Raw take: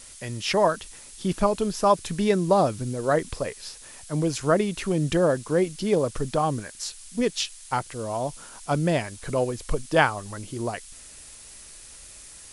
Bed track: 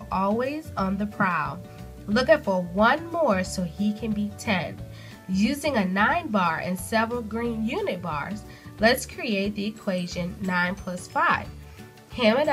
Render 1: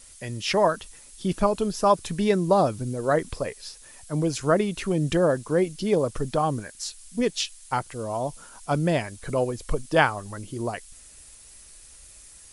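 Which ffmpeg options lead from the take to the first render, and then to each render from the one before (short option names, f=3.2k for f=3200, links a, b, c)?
-af "afftdn=nr=6:nf=-46"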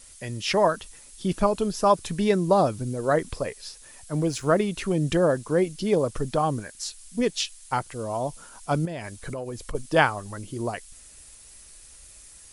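-filter_complex "[0:a]asettb=1/sr,asplit=3[a][b][c];[a]atrim=end=4.134[d];[b]atrim=start=4.13:end=4.64,asetpts=PTS-STARTPTS,afade=t=in:d=0.004:c=qsin,afade=t=out:st=0.506:d=0.004:c=qsin,aeval=exprs='sgn(val(0))*max(abs(val(0))-0.00266,0)':c=same[e];[c]atrim=start=4.636[f];[d][e]acrossfade=d=0.004:c1=hsin:c2=qsin[g];[g][f]acrossfade=d=0.004:c1=qsin:c2=hsin,asettb=1/sr,asplit=3[h][i][j];[h]atrim=end=8.854[k];[i]atrim=start=8.85:end=9.75,asetpts=PTS-STARTPTS,afade=t=in:d=0.004:c=qsin,afade=t=out:st=0.896:d=0.004:c=qsin,acompressor=threshold=-29dB:ratio=8:attack=3.2:release=140:knee=1:detection=peak[l];[j]atrim=start=9.746[m];[k][l]acrossfade=d=0.004:c1=hsin:c2=qsin[n];[n][m]acrossfade=d=0.004:c1=qsin:c2=hsin"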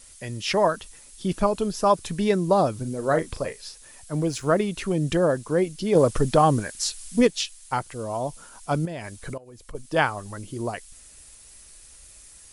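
-filter_complex "[0:a]asettb=1/sr,asplit=3[a][b][c];[a]atrim=end=2.724[d];[b]atrim=start=2.72:end=3.6,asetpts=PTS-STARTPTS,afade=t=in:d=0.004:c=qsin,afade=t=out:st=0.876:d=0.004:c=qsin,asplit=2[e][f];[f]adelay=37,volume=-10.5dB[g];[e][g]amix=inputs=2:normalize=0,atrim=end_sample=38808[h];[c]atrim=start=3.596[i];[d][h]acrossfade=d=0.004:c1=hsin:c2=qsin[j];[j][i]acrossfade=d=0.004:c1=qsin:c2=hsin,asettb=1/sr,asplit=3[k][l][m];[k]atrim=end=5.954[n];[l]atrim=start=5.95:end=7.27,asetpts=PTS-STARTPTS,afade=t=in:d=0.004:c=qsin,afade=t=out:st=1.316:d=0.004:c=qsin,acontrast=66[o];[m]atrim=start=7.266[p];[n][o]acrossfade=d=0.004:c1=hsin:c2=qsin[q];[q][p]acrossfade=d=0.004:c1=qsin:c2=hsin,asplit=2[r][s];[r]atrim=end=9.38,asetpts=PTS-STARTPTS,afade=t=out:st=9.376:d=0.004:c=hsin:silence=0.125893[t];[s]atrim=start=9.38,asetpts=PTS-STARTPTS,afade=t=in:d=0.83:silence=0.125893[u];[t][u]concat=n=2:v=0:a=1"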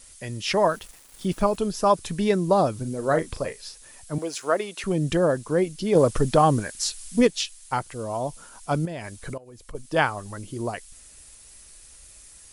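-filter_complex "[0:a]asettb=1/sr,asplit=3[a][b][c];[a]atrim=end=0.614[d];[b]atrim=start=0.61:end=1.57,asetpts=PTS-STARTPTS,afade=t=in:d=0.004:c=qsin,afade=t=out:st=0.956:d=0.004:c=qsin,aeval=exprs='val(0)*gte(abs(val(0)),0.00631)':c=same[e];[c]atrim=start=1.566[f];[d][e]acrossfade=d=0.004:c1=hsin:c2=qsin[g];[g][f]acrossfade=d=0.004:c1=qsin:c2=hsin,asettb=1/sr,asplit=3[h][i][j];[h]atrim=end=4.184[k];[i]atrim=start=4.18:end=4.84,asetpts=PTS-STARTPTS,afade=t=in:d=0.004:c=qsin,afade=t=out:st=0.656:d=0.004:c=qsin,highpass=450[l];[j]atrim=start=4.836[m];[k][l]acrossfade=d=0.004:c1=hsin:c2=qsin[n];[n][m]acrossfade=d=0.004:c1=qsin:c2=hsin"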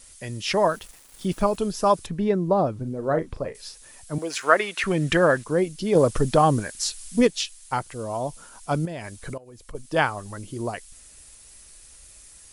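-filter_complex "[0:a]asettb=1/sr,asplit=3[a][b][c];[a]atrim=end=2.064[d];[b]atrim=start=2.06:end=3.55,asetpts=PTS-STARTPTS,afade=t=in:d=0.004:c=qsin,afade=t=out:st=1.486:d=0.004:c=qsin,lowpass=f=1.1k:p=1[e];[c]atrim=start=3.546[f];[d][e]acrossfade=d=0.004:c1=hsin:c2=qsin[g];[g][f]acrossfade=d=0.004:c1=qsin:c2=hsin,asettb=1/sr,asplit=3[h][i][j];[h]atrim=end=4.304[k];[i]atrim=start=4.3:end=5.44,asetpts=PTS-STARTPTS,afade=t=in:d=0.004:c=qsin,afade=t=out:st=1.136:d=0.004:c=qsin,equalizer=f=1.8k:t=o:w=1.7:g=12[l];[j]atrim=start=5.436[m];[k][l]acrossfade=d=0.004:c1=hsin:c2=qsin[n];[n][m]acrossfade=d=0.004:c1=qsin:c2=hsin"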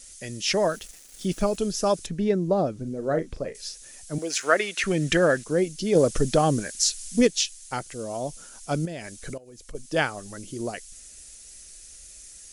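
-af "equalizer=f=100:t=o:w=0.67:g=-8,equalizer=f=1k:t=o:w=0.67:g=-10,equalizer=f=6.3k:t=o:w=0.67:g=7"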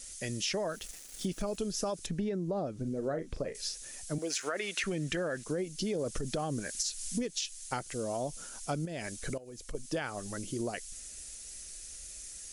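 -af "alimiter=limit=-16dB:level=0:latency=1:release=45,acompressor=threshold=-31dB:ratio=6"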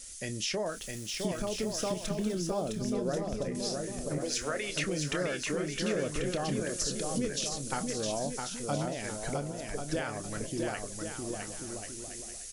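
-filter_complex "[0:a]asplit=2[a][b];[b]adelay=28,volume=-12dB[c];[a][c]amix=inputs=2:normalize=0,aecho=1:1:660|1089|1368|1549|1667:0.631|0.398|0.251|0.158|0.1"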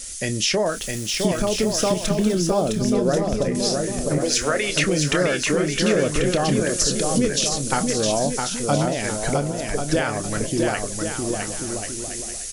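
-af "volume=12dB"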